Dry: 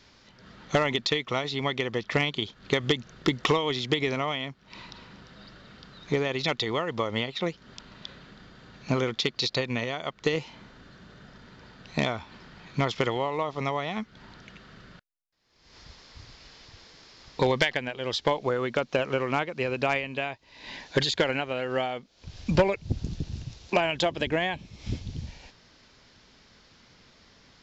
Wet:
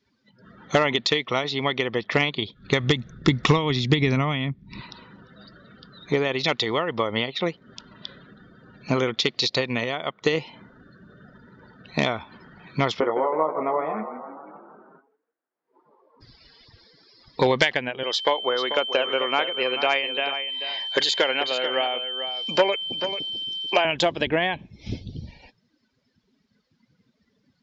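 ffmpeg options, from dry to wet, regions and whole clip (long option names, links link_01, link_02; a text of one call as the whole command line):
ffmpeg -i in.wav -filter_complex "[0:a]asettb=1/sr,asplit=3[link_01][link_02][link_03];[link_01]atrim=end=2.244[link_04];[link_02]atrim=start=2.24:end=4.81,asetpts=PTS-STARTPTS,afade=type=in:duration=0.004:curve=qsin,afade=type=out:start_time=2.566:duration=0.004:curve=qsin,bandreject=frequency=3100:width=12,asubboost=boost=9.5:cutoff=210[link_05];[link_03]atrim=start=4.806[link_06];[link_04][link_05]acrossfade=duration=0.004:curve1=hsin:curve2=qsin[link_07];[link_07][link_06]acrossfade=duration=0.004:curve1=qsin:curve2=hsin,asettb=1/sr,asplit=3[link_08][link_09][link_10];[link_08]atrim=end=13.004[link_11];[link_09]atrim=start=13:end=16.21,asetpts=PTS-STARTPTS,afade=type=in:duration=0.004:curve=qsin,afade=type=out:start_time=3.206:duration=0.004:curve=qsin,asuperpass=centerf=580:order=4:qfactor=0.55,asplit=2[link_12][link_13];[link_13]adelay=19,volume=-5.5dB[link_14];[link_12][link_14]amix=inputs=2:normalize=0,atrim=end_sample=141561,asplit=9[link_15][link_16][link_17][link_18][link_19][link_20][link_21][link_22][link_23];[link_16]adelay=160,afreqshift=31,volume=-9.5dB[link_24];[link_17]adelay=320,afreqshift=62,volume=-13.7dB[link_25];[link_18]adelay=480,afreqshift=93,volume=-17.8dB[link_26];[link_19]adelay=640,afreqshift=124,volume=-22dB[link_27];[link_20]adelay=800,afreqshift=155,volume=-26.1dB[link_28];[link_21]adelay=960,afreqshift=186,volume=-30.3dB[link_29];[link_22]adelay=1120,afreqshift=217,volume=-34.4dB[link_30];[link_23]adelay=1280,afreqshift=248,volume=-38.6dB[link_31];[link_15][link_24][link_25][link_26][link_27][link_28][link_29][link_30][link_31]amix=inputs=9:normalize=0,atrim=end_sample=141561[link_32];[link_10]atrim=start=16.206[link_33];[link_11][link_32]acrossfade=duration=0.004:curve1=hsin:curve2=qsin[link_34];[link_34][link_33]acrossfade=duration=0.004:curve1=qsin:curve2=hsin,asettb=1/sr,asplit=3[link_35][link_36][link_37];[link_35]atrim=end=18.034[link_38];[link_36]atrim=start=18.03:end=23.85,asetpts=PTS-STARTPTS,afade=type=in:duration=0.004:curve=qsin,afade=type=out:start_time=5.816:duration=0.004:curve=qsin,highpass=410,aeval=exprs='val(0)+0.0178*sin(2*PI*3100*n/s)':channel_layout=same,aecho=1:1:440:0.316,atrim=end_sample=256662[link_39];[link_37]atrim=start=23.846[link_40];[link_38][link_39]acrossfade=duration=0.004:curve1=hsin:curve2=qsin[link_41];[link_41][link_40]acrossfade=duration=0.004:curve1=qsin:curve2=hsin,lowshelf=frequency=94:gain=-10,afftdn=noise_reduction=24:noise_floor=-50,volume=4.5dB" out.wav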